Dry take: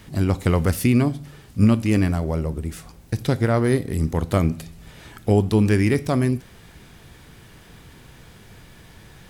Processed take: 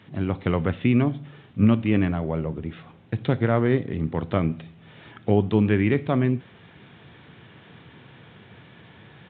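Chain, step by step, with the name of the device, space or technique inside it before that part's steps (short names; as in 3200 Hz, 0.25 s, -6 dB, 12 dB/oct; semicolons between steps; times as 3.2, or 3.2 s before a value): Bluetooth headset (HPF 100 Hz 24 dB/oct; AGC gain up to 4 dB; downsampling 8000 Hz; gain -4 dB; SBC 64 kbps 16000 Hz)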